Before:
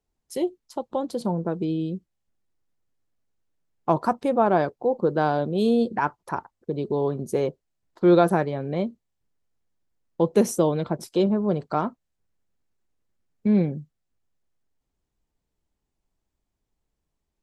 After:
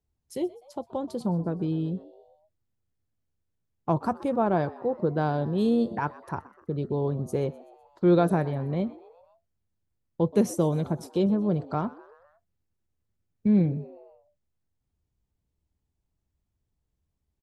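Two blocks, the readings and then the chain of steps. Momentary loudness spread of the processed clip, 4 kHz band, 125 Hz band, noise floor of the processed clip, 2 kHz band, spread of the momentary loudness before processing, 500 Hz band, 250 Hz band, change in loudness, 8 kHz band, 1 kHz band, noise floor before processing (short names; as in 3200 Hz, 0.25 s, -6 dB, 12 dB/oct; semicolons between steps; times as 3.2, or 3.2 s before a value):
13 LU, -6.0 dB, +1.5 dB, -80 dBFS, -6.0 dB, 12 LU, -4.5 dB, -1.5 dB, -3.0 dB, -6.0 dB, -5.5 dB, -81 dBFS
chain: bell 86 Hz +14 dB 1.9 oct; on a send: frequency-shifting echo 0.126 s, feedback 55%, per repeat +110 Hz, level -20.5 dB; on the sum: gain -6 dB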